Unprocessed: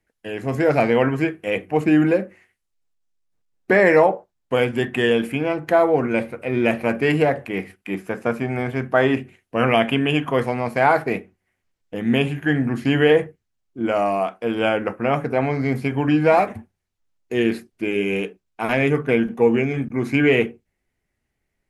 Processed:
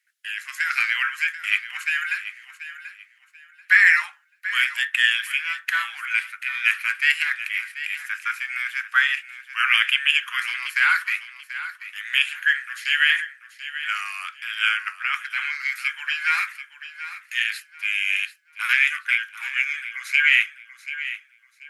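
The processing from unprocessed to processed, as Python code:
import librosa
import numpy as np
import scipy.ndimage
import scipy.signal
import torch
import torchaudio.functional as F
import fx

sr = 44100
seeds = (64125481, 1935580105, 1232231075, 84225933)

p1 = scipy.signal.sosfilt(scipy.signal.butter(8, 1400.0, 'highpass', fs=sr, output='sos'), x)
p2 = p1 + fx.echo_feedback(p1, sr, ms=736, feedback_pct=25, wet_db=-13, dry=0)
y = p2 * 10.0 ** (7.0 / 20.0)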